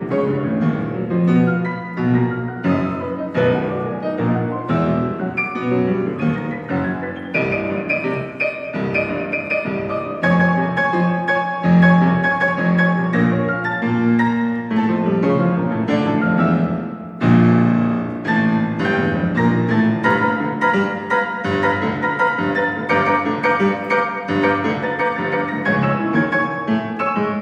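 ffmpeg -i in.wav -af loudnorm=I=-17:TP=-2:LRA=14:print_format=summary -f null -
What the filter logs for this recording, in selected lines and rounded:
Input Integrated:    -18.3 LUFS
Input True Peak:      -2.7 dBTP
Input LRA:             4.1 LU
Input Threshold:     -28.3 LUFS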